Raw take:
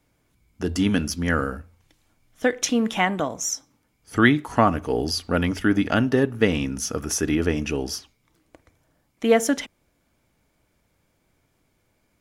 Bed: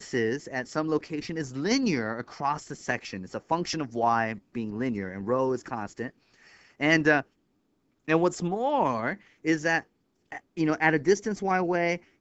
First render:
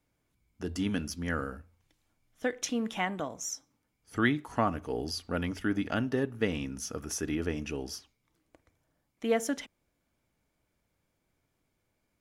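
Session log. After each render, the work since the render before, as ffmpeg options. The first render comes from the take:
-af "volume=0.316"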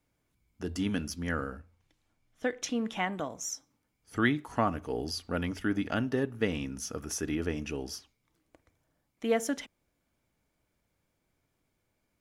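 -filter_complex "[0:a]asettb=1/sr,asplit=3[s0][s1][s2];[s0]atrim=end=1.324[s3];[s1]atrim=start=1.32:end=3.13,asetpts=PTS-STARTPTS,afade=t=in:d=0.004:c=qsin,afade=t=out:st=1.806:d=0.004:c=qsin,highshelf=f=9900:g=-9.5[s4];[s2]atrim=start=3.126[s5];[s3][s4]acrossfade=d=0.004:c1=hsin:c2=qsin[s6];[s6][s5]acrossfade=d=0.004:c1=qsin:c2=hsin"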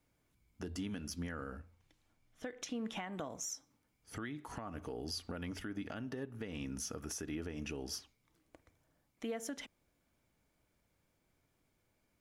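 -af "acompressor=threshold=0.0224:ratio=12,alimiter=level_in=2.24:limit=0.0631:level=0:latency=1:release=202,volume=0.447"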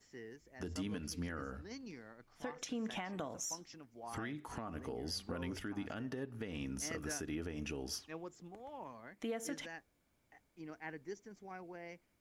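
-filter_complex "[1:a]volume=0.0631[s0];[0:a][s0]amix=inputs=2:normalize=0"

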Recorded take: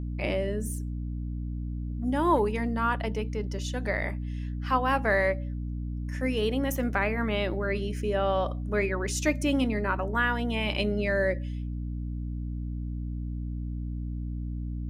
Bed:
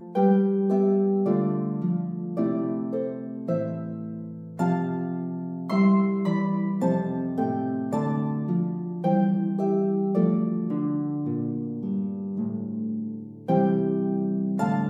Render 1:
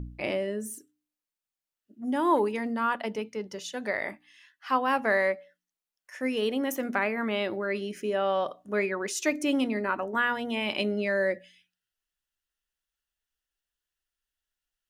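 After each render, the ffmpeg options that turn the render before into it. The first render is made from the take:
-af "bandreject=f=60:t=h:w=4,bandreject=f=120:t=h:w=4,bandreject=f=180:t=h:w=4,bandreject=f=240:t=h:w=4,bandreject=f=300:t=h:w=4"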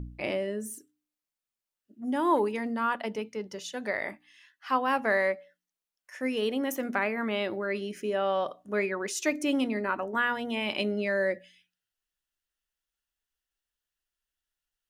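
-af "volume=0.891"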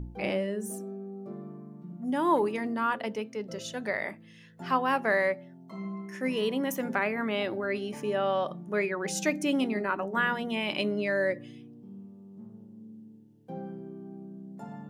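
-filter_complex "[1:a]volume=0.126[s0];[0:a][s0]amix=inputs=2:normalize=0"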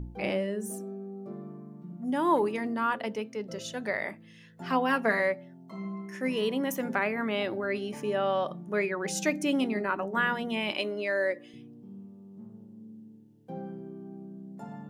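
-filter_complex "[0:a]asettb=1/sr,asplit=3[s0][s1][s2];[s0]atrim=end=4.704[s3];[s1]atrim=start=4.7:end=5.2,asetpts=PTS-STARTPTS,afade=t=in:d=0.004:c=qsin,afade=t=out:st=0.496:d=0.004:c=qsin,aecho=1:1:4.3:0.65,atrim=end_sample=22050[s4];[s2]atrim=start=5.196[s5];[s3][s4]acrossfade=d=0.004:c1=hsin:c2=qsin[s6];[s6][s5]acrossfade=d=0.004:c1=qsin:c2=hsin,asettb=1/sr,asplit=3[s7][s8][s9];[s7]atrim=end=10.724[s10];[s8]atrim=start=10.72:end=11.54,asetpts=PTS-STARTPTS,afade=t=in:d=0.004:c=qsin,afade=t=out:st=0.816:d=0.004:c=qsin,highpass=340[s11];[s9]atrim=start=11.536[s12];[s10][s11]acrossfade=d=0.004:c1=hsin:c2=qsin[s13];[s13][s12]acrossfade=d=0.004:c1=qsin:c2=hsin"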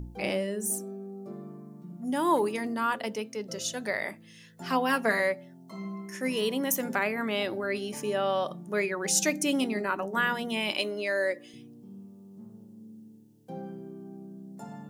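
-af "bass=f=250:g=-1,treble=f=4000:g=11"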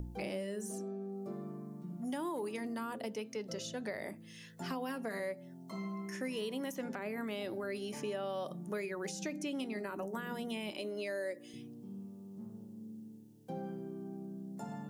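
-filter_complex "[0:a]alimiter=limit=0.112:level=0:latency=1:release=69,acrossover=split=600|5800[s0][s1][s2];[s0]acompressor=threshold=0.0112:ratio=4[s3];[s1]acompressor=threshold=0.00501:ratio=4[s4];[s2]acompressor=threshold=0.00126:ratio=4[s5];[s3][s4][s5]amix=inputs=3:normalize=0"

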